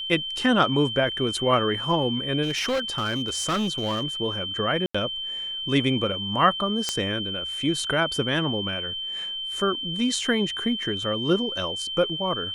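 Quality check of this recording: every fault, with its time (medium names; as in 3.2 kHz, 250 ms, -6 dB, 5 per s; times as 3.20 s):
whine 3.1 kHz -29 dBFS
2.42–4.04 s: clipped -21.5 dBFS
4.86–4.95 s: dropout 85 ms
6.89 s: pop -10 dBFS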